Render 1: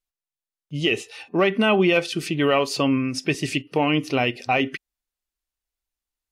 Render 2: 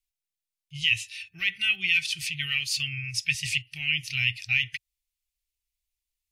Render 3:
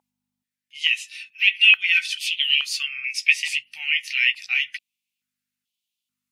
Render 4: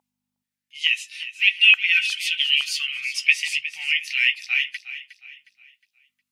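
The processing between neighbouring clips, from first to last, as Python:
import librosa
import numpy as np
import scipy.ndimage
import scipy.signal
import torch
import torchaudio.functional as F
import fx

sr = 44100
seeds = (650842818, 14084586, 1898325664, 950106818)

y1 = scipy.signal.sosfilt(scipy.signal.ellip(3, 1.0, 40, [110.0, 2200.0], 'bandstop', fs=sr, output='sos'), x)
y1 = y1 * 10.0 ** (2.0 / 20.0)
y2 = fx.chorus_voices(y1, sr, voices=4, hz=0.81, base_ms=14, depth_ms=2.2, mix_pct=35)
y2 = fx.add_hum(y2, sr, base_hz=50, snr_db=22)
y2 = fx.filter_held_highpass(y2, sr, hz=2.3, low_hz=860.0, high_hz=3100.0)
y2 = y2 * 10.0 ** (3.0 / 20.0)
y3 = fx.echo_feedback(y2, sr, ms=361, feedback_pct=37, wet_db=-13.5)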